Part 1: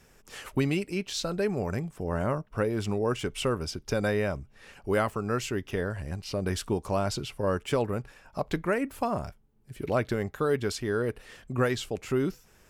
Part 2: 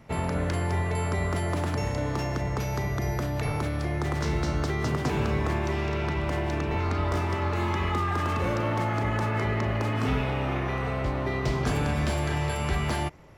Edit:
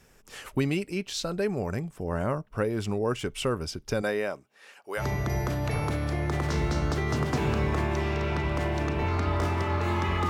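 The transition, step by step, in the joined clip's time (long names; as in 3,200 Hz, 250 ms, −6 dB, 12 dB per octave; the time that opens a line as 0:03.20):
part 1
0:04.01–0:05.04: high-pass filter 220 Hz → 760 Hz
0:05.00: continue with part 2 from 0:02.72, crossfade 0.08 s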